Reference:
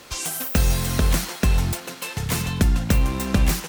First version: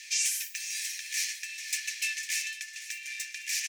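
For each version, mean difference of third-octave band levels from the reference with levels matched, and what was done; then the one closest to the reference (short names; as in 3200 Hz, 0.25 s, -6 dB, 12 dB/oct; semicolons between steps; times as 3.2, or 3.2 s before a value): 22.0 dB: high shelf 10000 Hz -10.5 dB; reverse; compressor, threshold -25 dBFS, peak gain reduction 11.5 dB; reverse; rippled Chebyshev high-pass 1700 Hz, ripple 9 dB; feedback echo 0.503 s, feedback 32%, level -14.5 dB; gain +8 dB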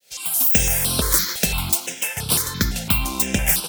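6.5 dB: opening faded in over 0.51 s; tilt +2.5 dB/oct; companded quantiser 8-bit; step phaser 5.9 Hz 300–6700 Hz; gain +4.5 dB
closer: second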